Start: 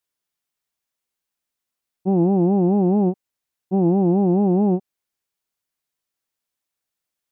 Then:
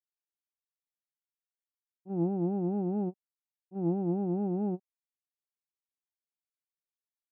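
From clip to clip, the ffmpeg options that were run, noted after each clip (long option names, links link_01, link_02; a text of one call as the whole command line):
ffmpeg -i in.wav -af "agate=range=-19dB:threshold=-16dB:ratio=16:detection=peak,volume=-8.5dB" out.wav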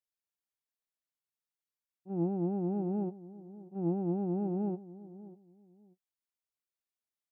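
ffmpeg -i in.wav -filter_complex "[0:a]asplit=2[link_01][link_02];[link_02]adelay=591,lowpass=frequency=840:poles=1,volume=-16dB,asplit=2[link_03][link_04];[link_04]adelay=591,lowpass=frequency=840:poles=1,volume=0.24[link_05];[link_01][link_03][link_05]amix=inputs=3:normalize=0,volume=-2dB" out.wav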